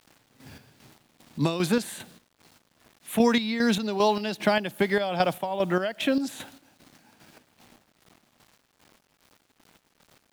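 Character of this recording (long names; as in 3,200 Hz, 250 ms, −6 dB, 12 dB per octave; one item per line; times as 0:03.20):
a quantiser's noise floor 10 bits, dither none
chopped level 2.5 Hz, depth 60%, duty 45%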